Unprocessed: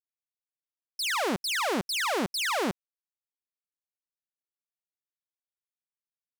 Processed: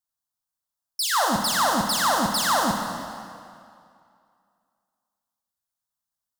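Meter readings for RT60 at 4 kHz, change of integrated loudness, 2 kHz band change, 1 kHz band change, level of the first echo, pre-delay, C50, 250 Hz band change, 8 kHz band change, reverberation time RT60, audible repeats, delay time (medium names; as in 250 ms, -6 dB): 1.9 s, +6.0 dB, +3.0 dB, +10.0 dB, no echo, 6 ms, 3.5 dB, +5.0 dB, +9.0 dB, 2.3 s, no echo, no echo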